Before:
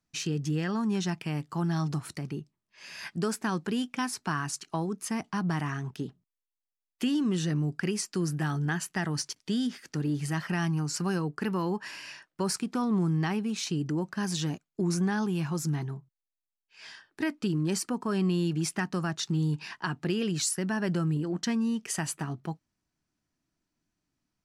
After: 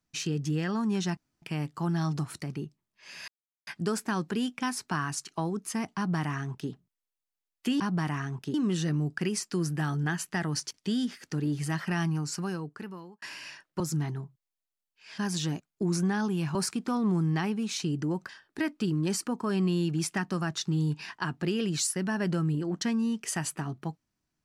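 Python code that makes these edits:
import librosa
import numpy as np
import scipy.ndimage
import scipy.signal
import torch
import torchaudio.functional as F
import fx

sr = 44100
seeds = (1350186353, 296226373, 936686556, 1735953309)

y = fx.edit(x, sr, fx.insert_room_tone(at_s=1.17, length_s=0.25),
    fx.insert_silence(at_s=3.03, length_s=0.39),
    fx.duplicate(start_s=5.32, length_s=0.74, to_s=7.16),
    fx.fade_out_span(start_s=10.68, length_s=1.16),
    fx.swap(start_s=12.42, length_s=1.74, other_s=15.53, other_length_s=1.38), tone=tone)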